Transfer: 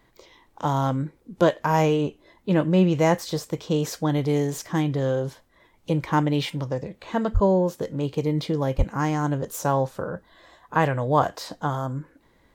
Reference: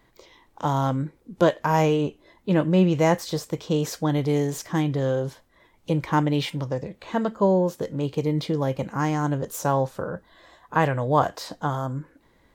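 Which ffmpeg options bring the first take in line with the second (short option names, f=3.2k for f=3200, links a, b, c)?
-filter_complex "[0:a]asplit=3[a][b][c];[a]afade=t=out:st=7.33:d=0.02[d];[b]highpass=f=140:w=0.5412,highpass=f=140:w=1.3066,afade=t=in:st=7.33:d=0.02,afade=t=out:st=7.45:d=0.02[e];[c]afade=t=in:st=7.45:d=0.02[f];[d][e][f]amix=inputs=3:normalize=0,asplit=3[g][h][i];[g]afade=t=out:st=8.77:d=0.02[j];[h]highpass=f=140:w=0.5412,highpass=f=140:w=1.3066,afade=t=in:st=8.77:d=0.02,afade=t=out:st=8.89:d=0.02[k];[i]afade=t=in:st=8.89:d=0.02[l];[j][k][l]amix=inputs=3:normalize=0"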